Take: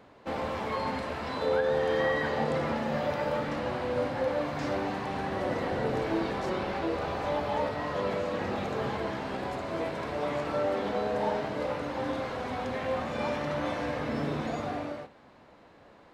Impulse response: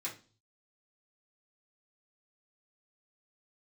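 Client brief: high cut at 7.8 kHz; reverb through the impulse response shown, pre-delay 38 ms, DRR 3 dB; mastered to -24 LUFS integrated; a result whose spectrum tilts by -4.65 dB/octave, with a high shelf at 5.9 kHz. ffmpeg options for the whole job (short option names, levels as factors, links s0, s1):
-filter_complex "[0:a]lowpass=7800,highshelf=f=5900:g=-4,asplit=2[s0][s1];[1:a]atrim=start_sample=2205,adelay=38[s2];[s1][s2]afir=irnorm=-1:irlink=0,volume=0.631[s3];[s0][s3]amix=inputs=2:normalize=0,volume=2"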